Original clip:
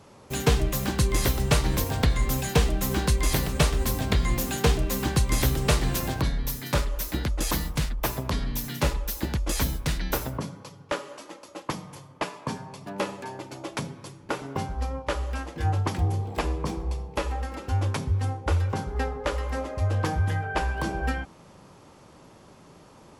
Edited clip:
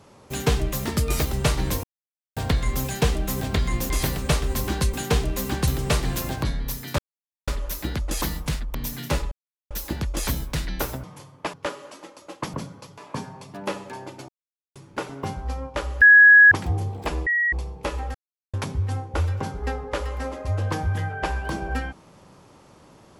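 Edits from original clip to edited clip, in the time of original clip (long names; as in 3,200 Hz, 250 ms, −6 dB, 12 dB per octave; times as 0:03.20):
0:00.85–0:01.32: play speed 116%
0:01.90: splice in silence 0.53 s
0:02.94–0:03.20: swap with 0:03.98–0:04.47
0:05.21–0:05.46: remove
0:06.77: splice in silence 0.49 s
0:08.04–0:08.46: remove
0:09.03: splice in silence 0.39 s
0:10.36–0:10.80: swap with 0:11.80–0:12.30
0:13.61–0:14.08: silence
0:15.34–0:15.84: beep over 1,670 Hz −7.5 dBFS
0:16.59–0:16.85: beep over 1,910 Hz −18.5 dBFS
0:17.47–0:17.86: silence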